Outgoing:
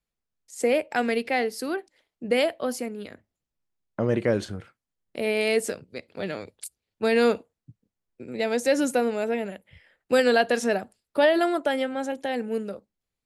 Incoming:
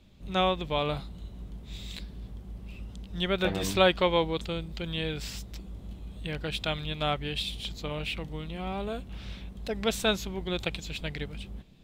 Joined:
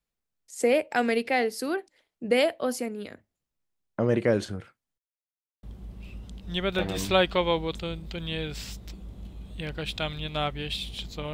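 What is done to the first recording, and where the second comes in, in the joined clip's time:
outgoing
4.98–5.63 mute
5.63 switch to incoming from 2.29 s

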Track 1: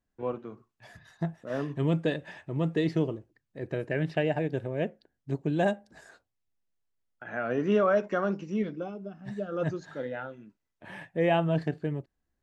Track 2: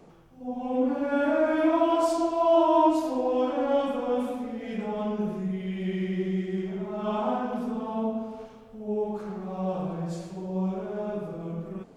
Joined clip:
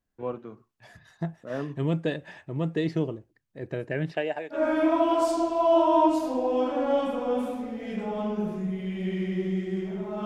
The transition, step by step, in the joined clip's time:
track 1
4.11–4.64 HPF 250 Hz -> 1000 Hz
4.57 switch to track 2 from 1.38 s, crossfade 0.14 s

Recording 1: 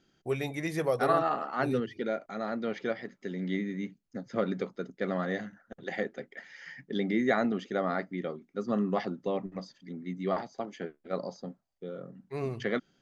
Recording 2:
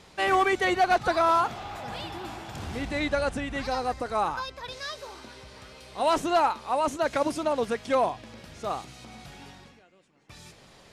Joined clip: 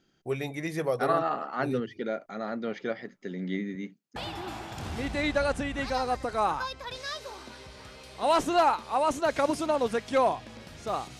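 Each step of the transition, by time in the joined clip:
recording 1
3.75–4.16 HPF 180 Hz 12 dB/oct
4.16 switch to recording 2 from 1.93 s

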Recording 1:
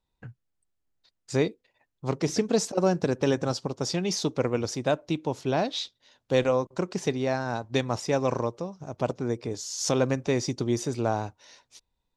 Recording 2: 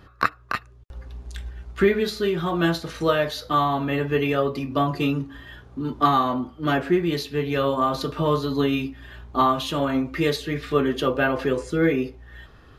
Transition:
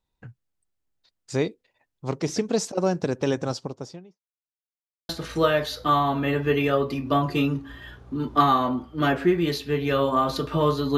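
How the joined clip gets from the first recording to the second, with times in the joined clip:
recording 1
3.47–4.21 studio fade out
4.21–5.09 mute
5.09 switch to recording 2 from 2.74 s

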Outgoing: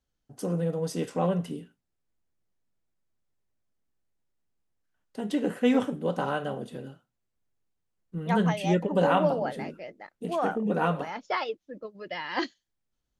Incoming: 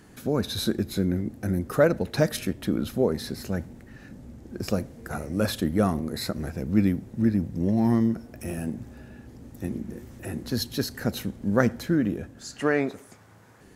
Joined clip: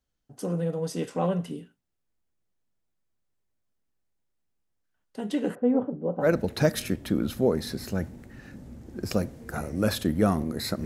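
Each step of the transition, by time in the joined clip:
outgoing
5.55–6.3 Chebyshev low-pass 650 Hz, order 2
6.25 switch to incoming from 1.82 s, crossfade 0.10 s

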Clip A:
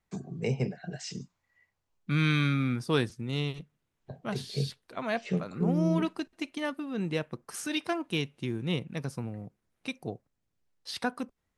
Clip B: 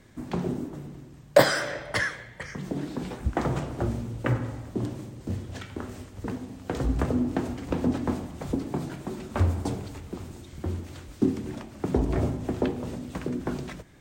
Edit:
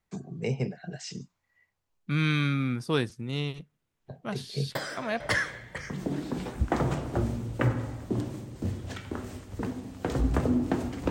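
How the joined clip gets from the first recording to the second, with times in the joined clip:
clip A
4.75 add clip B from 1.4 s 0.45 s -11 dB
5.2 switch to clip B from 1.85 s

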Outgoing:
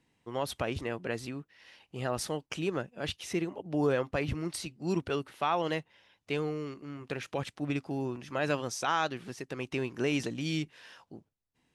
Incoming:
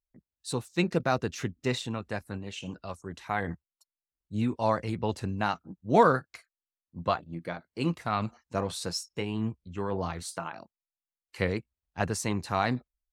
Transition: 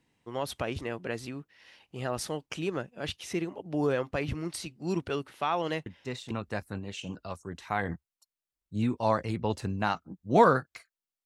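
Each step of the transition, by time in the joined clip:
outgoing
5.86 add incoming from 1.45 s 0.45 s -8 dB
6.31 switch to incoming from 1.9 s

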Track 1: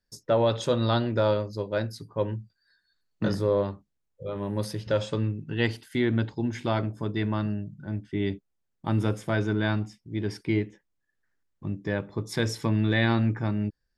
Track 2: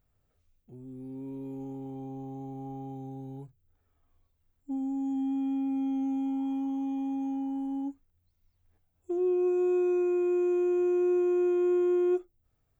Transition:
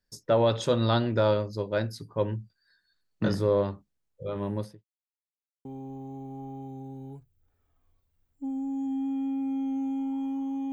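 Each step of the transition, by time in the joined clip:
track 1
4.44–4.85 studio fade out
4.85–5.65 mute
5.65 switch to track 2 from 1.92 s

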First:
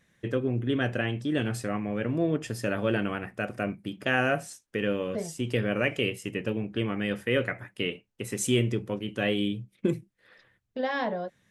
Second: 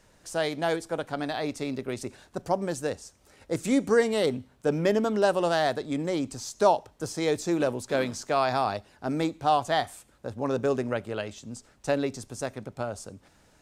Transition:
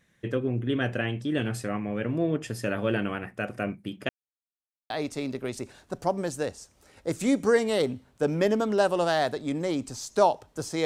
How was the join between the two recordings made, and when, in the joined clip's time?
first
4.09–4.9 mute
4.9 switch to second from 1.34 s

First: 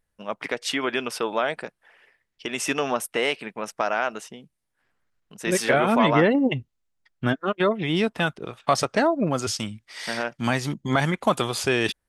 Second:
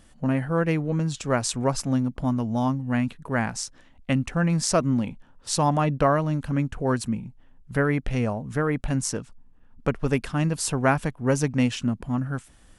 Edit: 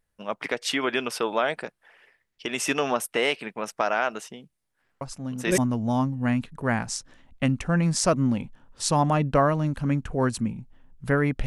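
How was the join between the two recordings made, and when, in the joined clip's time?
first
5.01 add second from 1.68 s 0.57 s -9.5 dB
5.58 switch to second from 2.25 s

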